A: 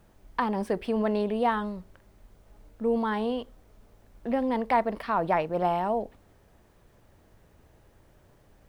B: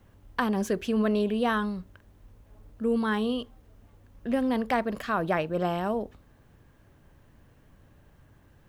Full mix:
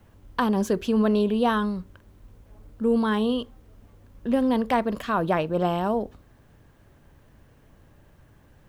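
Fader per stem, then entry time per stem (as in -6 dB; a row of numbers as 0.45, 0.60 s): -5.5, +2.0 dB; 0.00, 0.00 s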